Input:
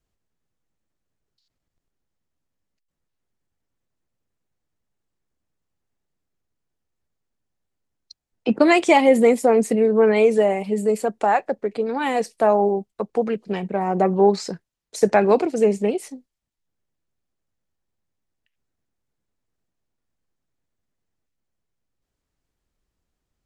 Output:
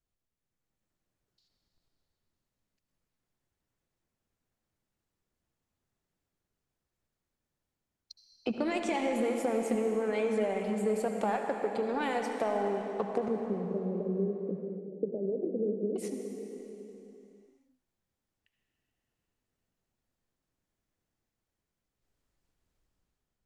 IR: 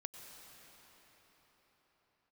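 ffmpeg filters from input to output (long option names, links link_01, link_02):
-filter_complex "[0:a]dynaudnorm=framelen=110:gausssize=11:maxgain=8dB,alimiter=limit=-7dB:level=0:latency=1,acompressor=threshold=-20dB:ratio=6,aeval=exprs='0.355*(cos(1*acos(clip(val(0)/0.355,-1,1)))-cos(1*PI/2))+0.0112*(cos(7*acos(clip(val(0)/0.355,-1,1)))-cos(7*PI/2))':channel_layout=same,asettb=1/sr,asplit=3[link_01][link_02][link_03];[link_01]atrim=end=13.284[link_04];[link_02]atrim=start=13.28:end=15.96,asetpts=PTS-STARTPTS,afade=type=in:duration=0.004:curve=qsin,afade=type=out:start_time=2.676:duration=0.004:curve=qsin,asuperpass=centerf=280:order=12:qfactor=0.69[link_05];[link_03]atrim=start=15.956[link_06];[link_04][link_05]acrossfade=duration=0.004:curve1=hsin:curve2=qsin[link_07];[link_07][link_06]acrossfade=duration=0.004:curve1=qsin:curve2=hsin[link_08];[1:a]atrim=start_sample=2205,asetrate=61740,aresample=44100[link_09];[link_08][link_09]afir=irnorm=-1:irlink=0"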